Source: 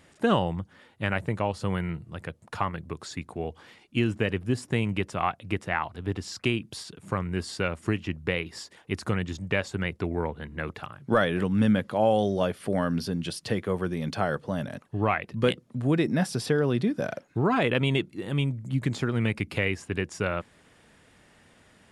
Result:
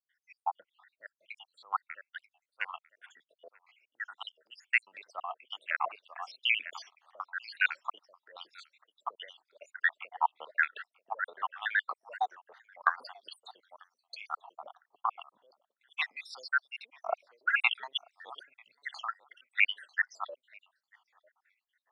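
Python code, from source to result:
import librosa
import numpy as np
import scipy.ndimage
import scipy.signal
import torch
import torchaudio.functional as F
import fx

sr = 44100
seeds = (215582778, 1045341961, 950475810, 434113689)

p1 = fx.spec_dropout(x, sr, seeds[0], share_pct=84)
p2 = scipy.signal.sosfilt(scipy.signal.butter(2, 2400.0, 'lowpass', fs=sr, output='sos'), p1)
p3 = p2 + fx.echo_feedback(p2, sr, ms=943, feedback_pct=21, wet_db=-19.5, dry=0)
p4 = fx.over_compress(p3, sr, threshold_db=-35.0, ratio=-1.0)
p5 = fx.vibrato(p4, sr, rate_hz=2.4, depth_cents=88.0)
p6 = scipy.signal.sosfilt(scipy.signal.butter(4, 750.0, 'highpass', fs=sr, output='sos'), p5)
p7 = fx.band_widen(p6, sr, depth_pct=70)
y = p7 * librosa.db_to_amplitude(4.5)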